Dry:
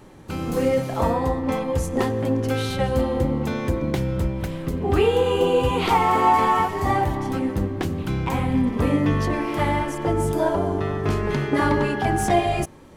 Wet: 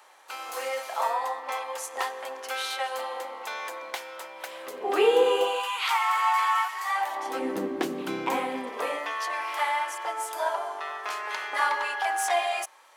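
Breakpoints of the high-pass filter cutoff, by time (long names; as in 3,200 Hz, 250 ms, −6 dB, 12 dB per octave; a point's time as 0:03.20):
high-pass filter 24 dB per octave
0:04.31 730 Hz
0:05.24 340 Hz
0:05.73 1,100 Hz
0:06.91 1,100 Hz
0:07.55 270 Hz
0:08.22 270 Hz
0:09.16 780 Hz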